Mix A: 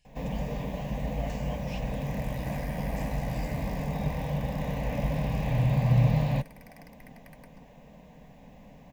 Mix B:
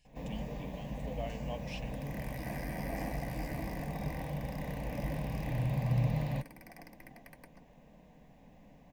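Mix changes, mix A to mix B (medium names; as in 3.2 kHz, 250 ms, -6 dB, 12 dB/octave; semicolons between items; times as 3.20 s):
first sound -8.0 dB; master: add peaking EQ 330 Hz +6 dB 0.34 oct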